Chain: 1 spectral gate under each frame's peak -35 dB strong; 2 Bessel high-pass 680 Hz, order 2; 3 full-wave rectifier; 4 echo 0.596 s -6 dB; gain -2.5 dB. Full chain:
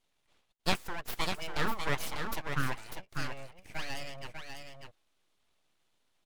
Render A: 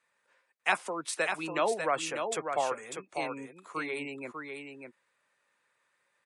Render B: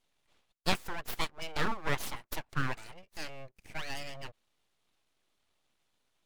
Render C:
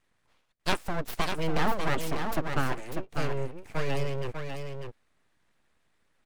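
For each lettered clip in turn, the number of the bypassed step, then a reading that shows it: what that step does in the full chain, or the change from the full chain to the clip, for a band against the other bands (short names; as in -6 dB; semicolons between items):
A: 3, 125 Hz band -15.0 dB; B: 4, momentary loudness spread change -2 LU; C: 2, 4 kHz band -6.0 dB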